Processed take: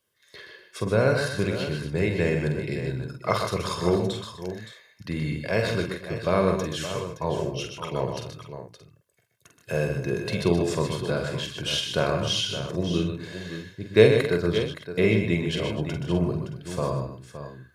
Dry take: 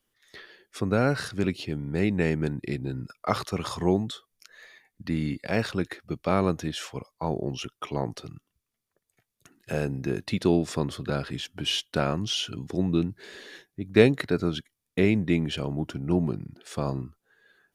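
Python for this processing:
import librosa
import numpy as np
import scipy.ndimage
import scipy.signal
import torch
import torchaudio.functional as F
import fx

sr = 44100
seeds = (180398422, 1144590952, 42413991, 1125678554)

y = scipy.signal.sosfilt(scipy.signal.butter(2, 77.0, 'highpass', fs=sr, output='sos'), x)
y = y + 0.56 * np.pad(y, (int(1.9 * sr / 1000.0), 0))[:len(y)]
y = fx.echo_multitap(y, sr, ms=(46, 125, 151, 251, 568, 623), db=(-6.0, -7.5, -10.0, -16.0, -11.0, -17.5))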